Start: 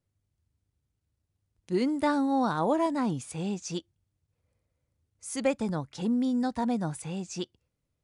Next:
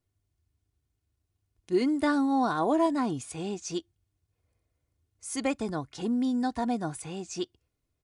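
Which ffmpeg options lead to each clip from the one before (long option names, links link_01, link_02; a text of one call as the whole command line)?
ffmpeg -i in.wav -af "aecho=1:1:2.8:0.47" out.wav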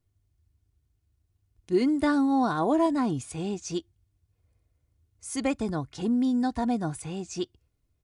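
ffmpeg -i in.wav -af "lowshelf=frequency=160:gain=9.5" out.wav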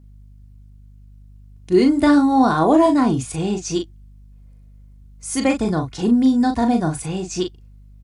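ffmpeg -i in.wav -filter_complex "[0:a]aeval=exprs='val(0)+0.002*(sin(2*PI*50*n/s)+sin(2*PI*2*50*n/s)/2+sin(2*PI*3*50*n/s)/3+sin(2*PI*4*50*n/s)/4+sin(2*PI*5*50*n/s)/5)':channel_layout=same,asplit=2[link_01][link_02];[link_02]adelay=38,volume=-6dB[link_03];[link_01][link_03]amix=inputs=2:normalize=0,volume=8.5dB" out.wav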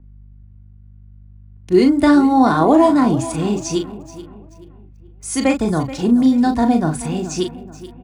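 ffmpeg -i in.wav -filter_complex "[0:a]aecho=1:1:430|860|1290|1720:0.178|0.0711|0.0285|0.0114,acrossover=split=280|1000|2400[link_01][link_02][link_03][link_04];[link_04]aeval=exprs='sgn(val(0))*max(abs(val(0))-0.002,0)':channel_layout=same[link_05];[link_01][link_02][link_03][link_05]amix=inputs=4:normalize=0,volume=2dB" out.wav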